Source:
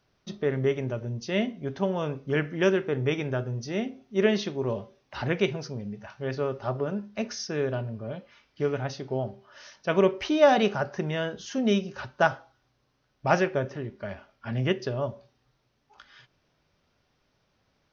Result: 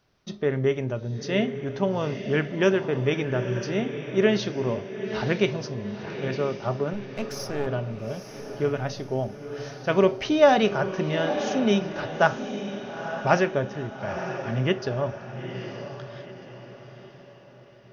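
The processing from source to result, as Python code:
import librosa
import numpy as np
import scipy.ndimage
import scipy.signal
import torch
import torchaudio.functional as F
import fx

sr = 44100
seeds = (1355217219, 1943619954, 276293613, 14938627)

y = fx.halfwave_gain(x, sr, db=-12.0, at=(6.93, 7.67))
y = fx.echo_diffused(y, sr, ms=919, feedback_pct=43, wet_db=-9)
y = F.gain(torch.from_numpy(y), 2.0).numpy()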